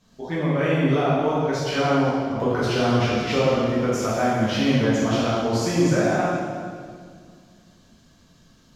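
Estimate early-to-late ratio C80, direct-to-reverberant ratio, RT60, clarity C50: 0.0 dB, −9.5 dB, 2.0 s, −2.5 dB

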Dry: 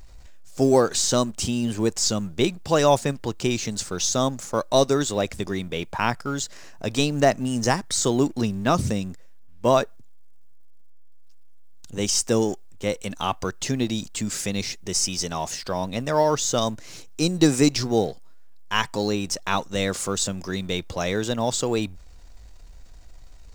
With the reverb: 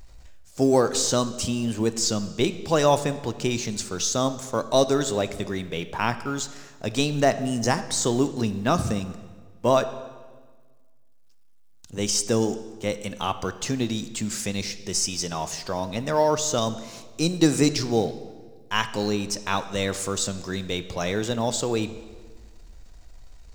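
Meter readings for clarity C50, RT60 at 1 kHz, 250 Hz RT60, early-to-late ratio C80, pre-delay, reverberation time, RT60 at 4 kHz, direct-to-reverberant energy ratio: 13.0 dB, 1.4 s, 1.8 s, 14.5 dB, 14 ms, 1.4 s, 1.2 s, 11.5 dB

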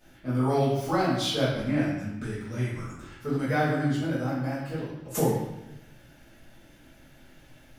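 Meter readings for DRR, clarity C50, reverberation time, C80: −12.5 dB, 1.0 dB, 0.95 s, 3.5 dB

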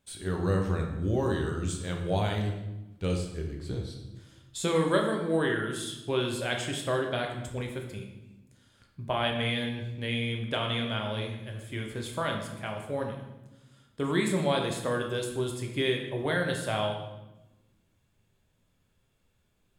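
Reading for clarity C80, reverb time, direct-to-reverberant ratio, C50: 7.5 dB, 1.0 s, 1.5 dB, 5.5 dB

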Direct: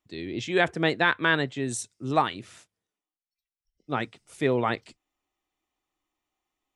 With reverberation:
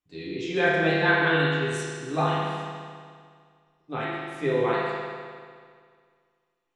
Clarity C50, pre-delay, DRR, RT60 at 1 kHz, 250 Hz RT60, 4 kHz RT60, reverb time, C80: −3.0 dB, 6 ms, −10.0 dB, 2.0 s, 2.0 s, 1.9 s, 2.0 s, −0.5 dB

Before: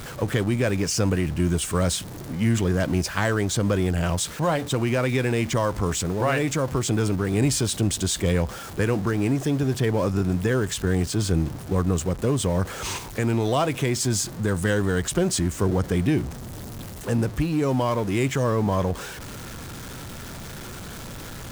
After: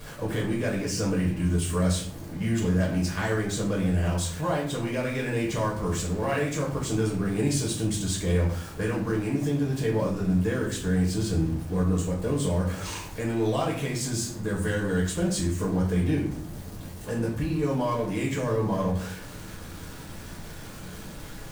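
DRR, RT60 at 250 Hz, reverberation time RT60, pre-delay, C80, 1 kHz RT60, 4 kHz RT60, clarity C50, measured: −4.0 dB, 0.90 s, 0.60 s, 6 ms, 10.5 dB, 0.50 s, 0.40 s, 6.0 dB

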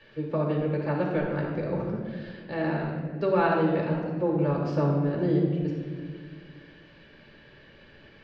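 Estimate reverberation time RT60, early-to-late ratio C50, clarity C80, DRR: 1.8 s, 2.0 dB, 3.5 dB, −2.5 dB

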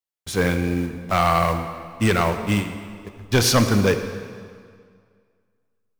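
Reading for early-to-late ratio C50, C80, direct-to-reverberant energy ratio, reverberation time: 8.5 dB, 9.5 dB, 7.5 dB, 2.1 s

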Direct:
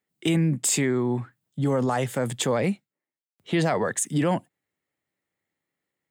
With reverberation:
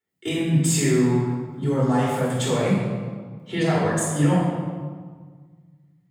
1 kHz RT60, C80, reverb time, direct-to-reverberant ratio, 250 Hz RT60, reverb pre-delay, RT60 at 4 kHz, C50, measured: 1.6 s, 1.5 dB, 1.6 s, −8.0 dB, 2.1 s, 3 ms, 1.1 s, −0.5 dB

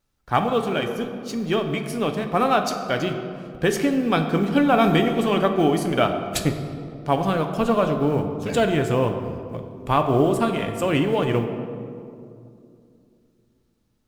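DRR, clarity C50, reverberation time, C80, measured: 5.0 dB, 7.5 dB, 2.6 s, 8.5 dB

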